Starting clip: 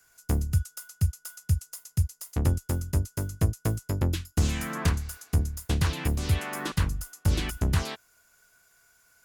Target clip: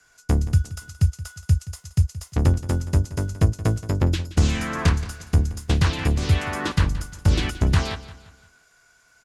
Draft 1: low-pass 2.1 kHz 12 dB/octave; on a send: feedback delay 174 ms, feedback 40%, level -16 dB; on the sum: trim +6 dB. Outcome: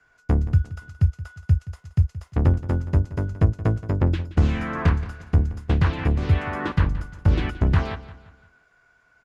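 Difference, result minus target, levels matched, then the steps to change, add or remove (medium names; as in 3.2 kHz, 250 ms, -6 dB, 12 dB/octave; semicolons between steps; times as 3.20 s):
8 kHz band -18.0 dB
change: low-pass 6.6 kHz 12 dB/octave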